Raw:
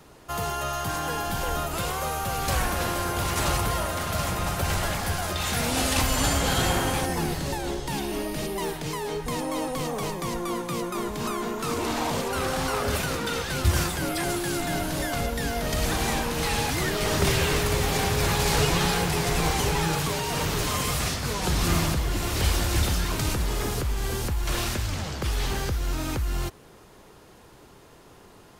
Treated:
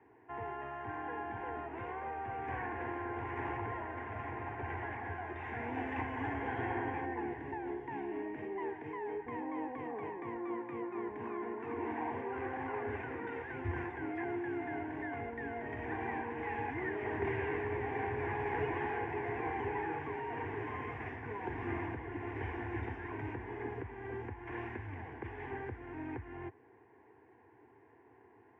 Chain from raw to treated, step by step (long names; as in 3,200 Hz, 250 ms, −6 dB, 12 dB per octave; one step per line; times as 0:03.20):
Chebyshev band-pass filter 100–1,900 Hz, order 3
phaser with its sweep stopped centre 860 Hz, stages 8
level −7 dB